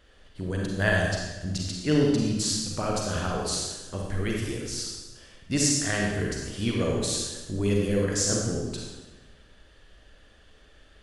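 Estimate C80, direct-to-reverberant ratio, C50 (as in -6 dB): 2.5 dB, -1.5 dB, 0.0 dB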